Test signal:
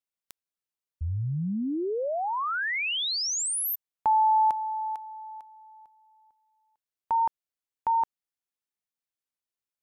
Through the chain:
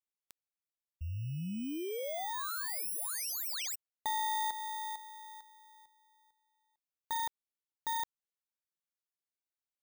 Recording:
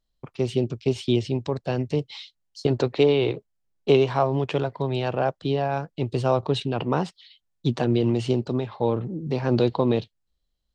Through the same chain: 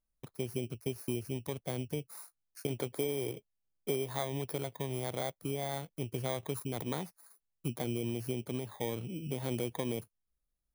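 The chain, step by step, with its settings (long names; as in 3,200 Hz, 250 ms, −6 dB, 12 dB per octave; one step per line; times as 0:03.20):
samples in bit-reversed order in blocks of 16 samples
downward compressor 2.5 to 1, threshold −25 dBFS
level −8.5 dB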